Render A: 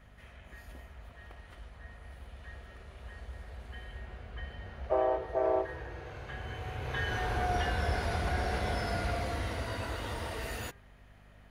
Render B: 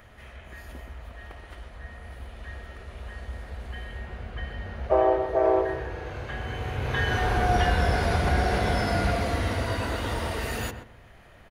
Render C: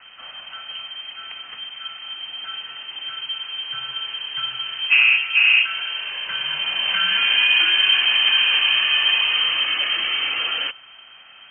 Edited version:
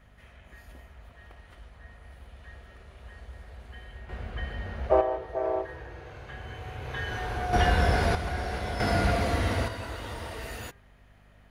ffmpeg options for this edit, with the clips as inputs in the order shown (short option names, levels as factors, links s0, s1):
-filter_complex "[1:a]asplit=3[s0][s1][s2];[0:a]asplit=4[s3][s4][s5][s6];[s3]atrim=end=4.092[s7];[s0]atrim=start=4.088:end=5.012[s8];[s4]atrim=start=5.008:end=7.532[s9];[s1]atrim=start=7.528:end=8.152[s10];[s5]atrim=start=8.148:end=8.802[s11];[s2]atrim=start=8.798:end=9.682[s12];[s6]atrim=start=9.678[s13];[s7][s8]acrossfade=d=0.004:c1=hsin:c2=hsin[s14];[s14][s9]acrossfade=d=0.004:c1=hsin:c2=hsin[s15];[s15][s10]acrossfade=d=0.004:c1=hsin:c2=hsin[s16];[s16][s11]acrossfade=d=0.004:c1=hsin:c2=hsin[s17];[s17][s12]acrossfade=d=0.004:c1=hsin:c2=hsin[s18];[s18][s13]acrossfade=d=0.004:c1=hsin:c2=hsin"